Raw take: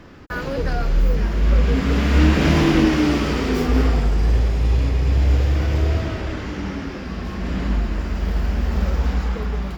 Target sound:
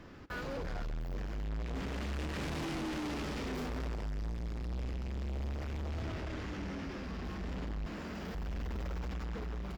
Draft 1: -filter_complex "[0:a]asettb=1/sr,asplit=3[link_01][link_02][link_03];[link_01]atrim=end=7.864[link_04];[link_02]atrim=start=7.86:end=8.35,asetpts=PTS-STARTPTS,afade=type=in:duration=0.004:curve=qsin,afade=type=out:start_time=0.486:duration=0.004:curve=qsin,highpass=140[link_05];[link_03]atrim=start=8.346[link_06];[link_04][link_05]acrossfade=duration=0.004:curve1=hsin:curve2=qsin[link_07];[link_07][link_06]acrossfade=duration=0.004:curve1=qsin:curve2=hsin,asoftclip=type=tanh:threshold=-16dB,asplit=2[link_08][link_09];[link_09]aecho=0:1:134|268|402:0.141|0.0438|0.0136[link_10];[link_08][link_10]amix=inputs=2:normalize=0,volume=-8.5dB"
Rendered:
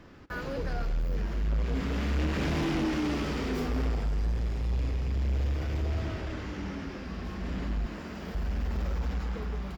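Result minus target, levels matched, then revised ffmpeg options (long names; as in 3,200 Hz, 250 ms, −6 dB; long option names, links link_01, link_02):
soft clipping: distortion −7 dB
-filter_complex "[0:a]asettb=1/sr,asplit=3[link_01][link_02][link_03];[link_01]atrim=end=7.864[link_04];[link_02]atrim=start=7.86:end=8.35,asetpts=PTS-STARTPTS,afade=type=in:duration=0.004:curve=qsin,afade=type=out:start_time=0.486:duration=0.004:curve=qsin,highpass=140[link_05];[link_03]atrim=start=8.346[link_06];[link_04][link_05]acrossfade=duration=0.004:curve1=hsin:curve2=qsin[link_07];[link_07][link_06]acrossfade=duration=0.004:curve1=qsin:curve2=hsin,asoftclip=type=tanh:threshold=-27.5dB,asplit=2[link_08][link_09];[link_09]aecho=0:1:134|268|402:0.141|0.0438|0.0136[link_10];[link_08][link_10]amix=inputs=2:normalize=0,volume=-8.5dB"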